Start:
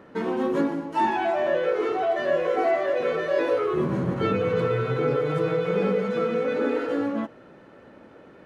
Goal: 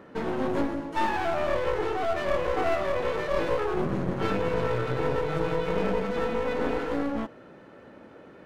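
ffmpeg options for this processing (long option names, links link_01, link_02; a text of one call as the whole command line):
ffmpeg -i in.wav -af "aeval=exprs='clip(val(0),-1,0.0168)':channel_layout=same" out.wav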